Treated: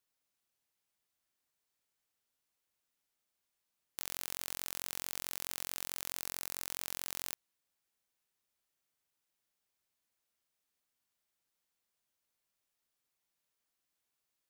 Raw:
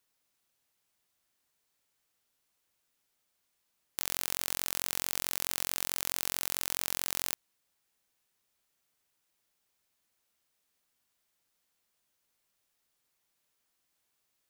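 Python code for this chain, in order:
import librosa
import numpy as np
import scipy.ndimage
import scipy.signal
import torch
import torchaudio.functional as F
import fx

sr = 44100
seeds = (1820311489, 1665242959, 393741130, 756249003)

y = fx.peak_eq(x, sr, hz=3100.0, db=-8.0, octaves=0.23, at=(6.2, 6.66))
y = y * librosa.db_to_amplitude(-7.0)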